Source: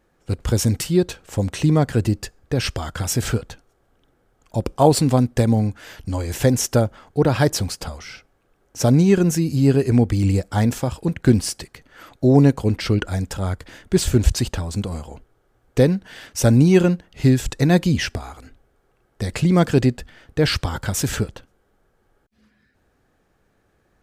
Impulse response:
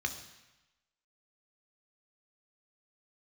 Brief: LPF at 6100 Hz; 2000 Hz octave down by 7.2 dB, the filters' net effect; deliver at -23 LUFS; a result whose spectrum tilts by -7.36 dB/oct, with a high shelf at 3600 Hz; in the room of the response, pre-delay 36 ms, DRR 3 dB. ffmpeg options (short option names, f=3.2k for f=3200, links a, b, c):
-filter_complex "[0:a]lowpass=6.1k,equalizer=f=2k:t=o:g=-7.5,highshelf=f=3.6k:g=-7.5,asplit=2[a][b];[1:a]atrim=start_sample=2205,adelay=36[c];[b][c]afir=irnorm=-1:irlink=0,volume=-7dB[d];[a][d]amix=inputs=2:normalize=0,volume=-4dB"